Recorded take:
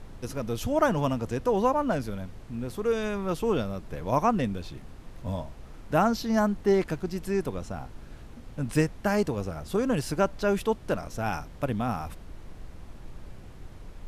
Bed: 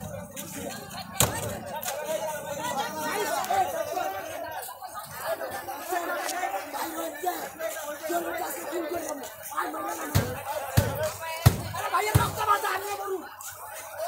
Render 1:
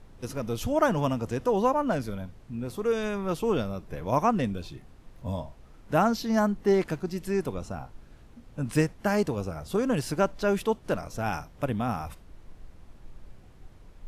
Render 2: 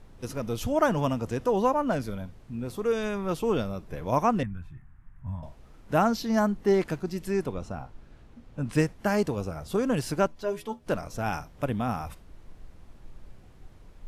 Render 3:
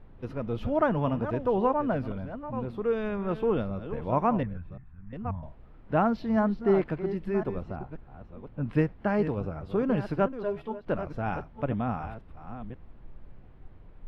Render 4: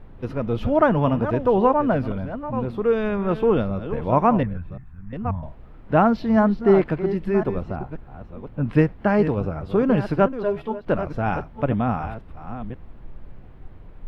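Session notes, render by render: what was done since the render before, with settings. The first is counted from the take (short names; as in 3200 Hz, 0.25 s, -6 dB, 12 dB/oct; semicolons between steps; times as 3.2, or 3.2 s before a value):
noise print and reduce 7 dB
4.43–5.43 EQ curve 140 Hz 0 dB, 340 Hz -17 dB, 490 Hz -26 dB, 860 Hz -9 dB, 1700 Hz -1 dB, 2900 Hz -17 dB, 4300 Hz -29 dB, 8500 Hz -17 dB; 7.44–8.78 high shelf 7300 Hz -9.5 dB; 10.27–10.87 metallic resonator 75 Hz, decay 0.21 s, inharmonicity 0.008
reverse delay 0.531 s, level -11 dB; air absorption 420 m
gain +7.5 dB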